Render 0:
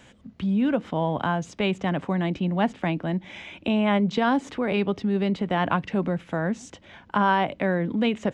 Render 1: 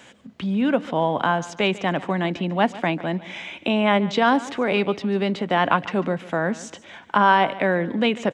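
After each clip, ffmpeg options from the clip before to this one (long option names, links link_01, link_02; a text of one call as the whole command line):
ffmpeg -i in.wav -af "highpass=frequency=350:poles=1,aecho=1:1:145|290|435:0.126|0.039|0.0121,volume=6dB" out.wav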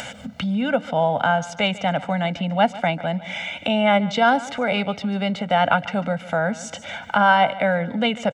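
ffmpeg -i in.wav -af "aecho=1:1:1.4:0.92,acompressor=mode=upward:threshold=-21dB:ratio=2.5,volume=-1.5dB" out.wav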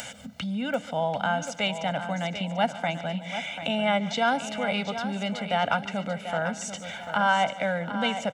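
ffmpeg -i in.wav -af "highshelf=frequency=4800:gain=11,aecho=1:1:740|1480|2220|2960:0.316|0.126|0.0506|0.0202,volume=-7.5dB" out.wav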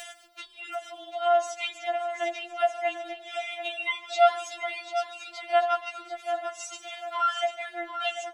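ffmpeg -i in.wav -af "bandreject=frequency=61.05:width_type=h:width=4,bandreject=frequency=122.1:width_type=h:width=4,bandreject=frequency=183.15:width_type=h:width=4,bandreject=frequency=244.2:width_type=h:width=4,bandreject=frequency=305.25:width_type=h:width=4,bandreject=frequency=366.3:width_type=h:width=4,bandreject=frequency=427.35:width_type=h:width=4,bandreject=frequency=488.4:width_type=h:width=4,bandreject=frequency=549.45:width_type=h:width=4,bandreject=frequency=610.5:width_type=h:width=4,bandreject=frequency=671.55:width_type=h:width=4,bandreject=frequency=732.6:width_type=h:width=4,bandreject=frequency=793.65:width_type=h:width=4,bandreject=frequency=854.7:width_type=h:width=4,bandreject=frequency=915.75:width_type=h:width=4,bandreject=frequency=976.8:width_type=h:width=4,bandreject=frequency=1037.85:width_type=h:width=4,bandreject=frequency=1098.9:width_type=h:width=4,bandreject=frequency=1159.95:width_type=h:width=4,bandreject=frequency=1221:width_type=h:width=4,bandreject=frequency=1282.05:width_type=h:width=4,bandreject=frequency=1343.1:width_type=h:width=4,bandreject=frequency=1404.15:width_type=h:width=4,bandreject=frequency=1465.2:width_type=h:width=4,bandreject=frequency=1526.25:width_type=h:width=4,bandreject=frequency=1587.3:width_type=h:width=4,bandreject=frequency=1648.35:width_type=h:width=4,bandreject=frequency=1709.4:width_type=h:width=4,afftfilt=real='re*4*eq(mod(b,16),0)':imag='im*4*eq(mod(b,16),0)':win_size=2048:overlap=0.75" out.wav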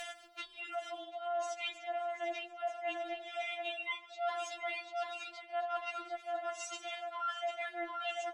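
ffmpeg -i in.wav -af "aemphasis=mode=reproduction:type=cd,areverse,acompressor=threshold=-36dB:ratio=5,areverse" out.wav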